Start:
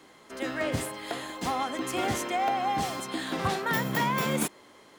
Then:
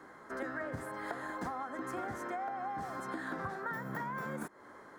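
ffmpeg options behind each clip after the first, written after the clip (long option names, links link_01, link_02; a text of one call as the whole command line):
ffmpeg -i in.wav -af "highshelf=frequency=2100:width_type=q:width=3:gain=-9.5,acompressor=threshold=-36dB:ratio=12" out.wav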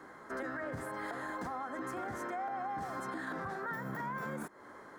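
ffmpeg -i in.wav -af "alimiter=level_in=8.5dB:limit=-24dB:level=0:latency=1:release=29,volume=-8.5dB,volume=1.5dB" out.wav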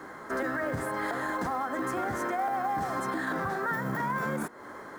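ffmpeg -i in.wav -af "bandreject=frequency=240.7:width_type=h:width=4,bandreject=frequency=481.4:width_type=h:width=4,bandreject=frequency=722.1:width_type=h:width=4,bandreject=frequency=962.8:width_type=h:width=4,bandreject=frequency=1203.5:width_type=h:width=4,bandreject=frequency=1444.2:width_type=h:width=4,bandreject=frequency=1684.9:width_type=h:width=4,bandreject=frequency=1925.6:width_type=h:width=4,bandreject=frequency=2166.3:width_type=h:width=4,bandreject=frequency=2407:width_type=h:width=4,bandreject=frequency=2647.7:width_type=h:width=4,bandreject=frequency=2888.4:width_type=h:width=4,bandreject=frequency=3129.1:width_type=h:width=4,bandreject=frequency=3369.8:width_type=h:width=4,bandreject=frequency=3610.5:width_type=h:width=4,bandreject=frequency=3851.2:width_type=h:width=4,bandreject=frequency=4091.9:width_type=h:width=4,bandreject=frequency=4332.6:width_type=h:width=4,bandreject=frequency=4573.3:width_type=h:width=4,bandreject=frequency=4814:width_type=h:width=4,acrusher=bits=7:mode=log:mix=0:aa=0.000001,volume=8.5dB" out.wav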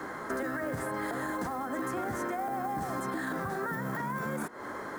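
ffmpeg -i in.wav -filter_complex "[0:a]acrossover=split=420|7400[link_01][link_02][link_03];[link_01]acompressor=threshold=-41dB:ratio=4[link_04];[link_02]acompressor=threshold=-41dB:ratio=4[link_05];[link_03]acompressor=threshold=-54dB:ratio=4[link_06];[link_04][link_05][link_06]amix=inputs=3:normalize=0,volume=5dB" out.wav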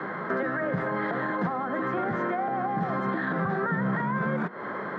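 ffmpeg -i in.wav -af "highpass=frequency=120:width=0.5412,highpass=frequency=120:width=1.3066,equalizer=frequency=180:width_type=q:width=4:gain=9,equalizer=frequency=280:width_type=q:width=4:gain=-7,equalizer=frequency=870:width_type=q:width=4:gain=-3,equalizer=frequency=2600:width_type=q:width=4:gain=-4,lowpass=frequency=3200:width=0.5412,lowpass=frequency=3200:width=1.3066,volume=6.5dB" out.wav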